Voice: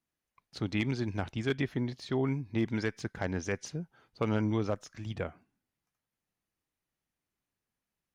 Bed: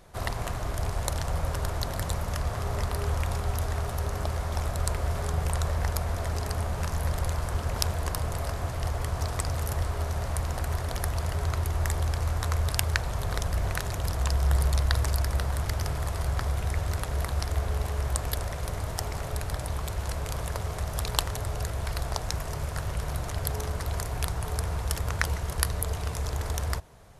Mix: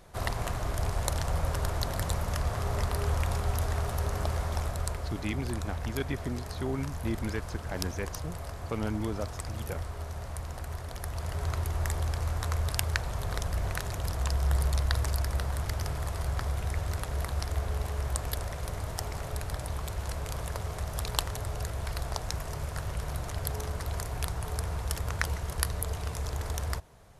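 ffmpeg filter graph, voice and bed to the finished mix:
ffmpeg -i stem1.wav -i stem2.wav -filter_complex "[0:a]adelay=4500,volume=-3dB[link_01];[1:a]volume=4.5dB,afade=type=out:start_time=4.4:duration=0.73:silence=0.421697,afade=type=in:start_time=11:duration=0.49:silence=0.562341[link_02];[link_01][link_02]amix=inputs=2:normalize=0" out.wav

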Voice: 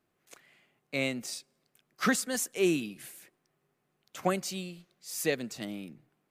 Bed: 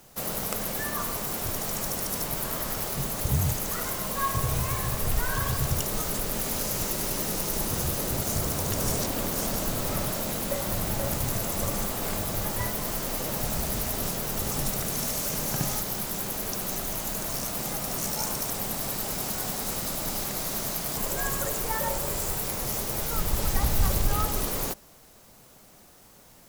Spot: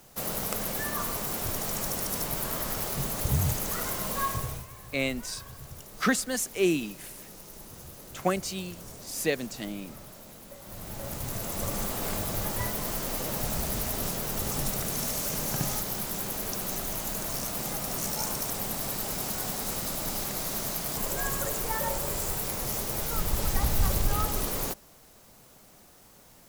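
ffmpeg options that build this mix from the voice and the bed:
ffmpeg -i stem1.wav -i stem2.wav -filter_complex "[0:a]adelay=4000,volume=2dB[link_01];[1:a]volume=15dB,afade=type=out:start_time=4.19:duration=0.47:silence=0.149624,afade=type=in:start_time=10.6:duration=1.33:silence=0.158489[link_02];[link_01][link_02]amix=inputs=2:normalize=0" out.wav

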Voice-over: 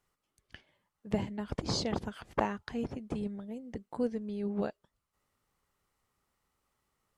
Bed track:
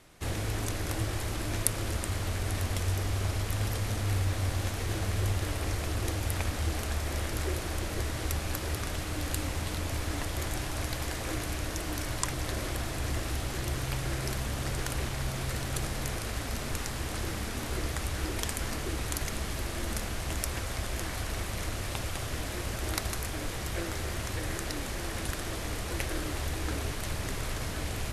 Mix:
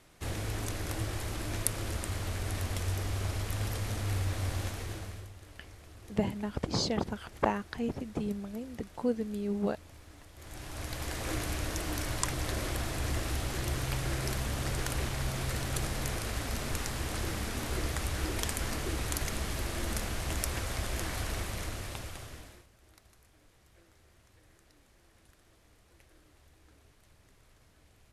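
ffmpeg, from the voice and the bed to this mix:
ffmpeg -i stem1.wav -i stem2.wav -filter_complex "[0:a]adelay=5050,volume=2dB[link_01];[1:a]volume=16.5dB,afade=type=out:start_time=4.6:duration=0.69:silence=0.141254,afade=type=in:start_time=10.36:duration=0.97:silence=0.105925,afade=type=out:start_time=21.27:duration=1.4:silence=0.0398107[link_02];[link_01][link_02]amix=inputs=2:normalize=0" out.wav

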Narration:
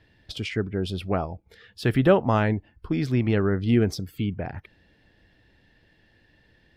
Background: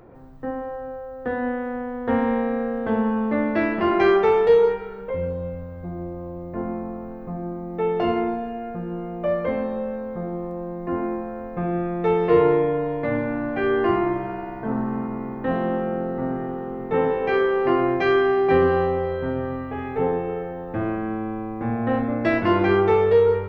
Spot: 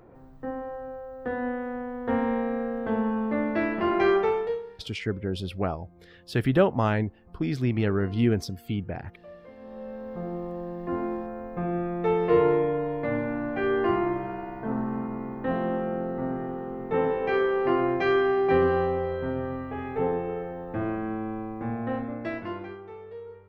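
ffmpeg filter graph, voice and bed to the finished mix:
ffmpeg -i stem1.wav -i stem2.wav -filter_complex "[0:a]adelay=4500,volume=-2.5dB[link_01];[1:a]volume=15dB,afade=type=out:start_time=4.17:duration=0.46:silence=0.112202,afade=type=in:start_time=9.57:duration=0.7:silence=0.105925,afade=type=out:start_time=21.39:duration=1.39:silence=0.0891251[link_02];[link_01][link_02]amix=inputs=2:normalize=0" out.wav

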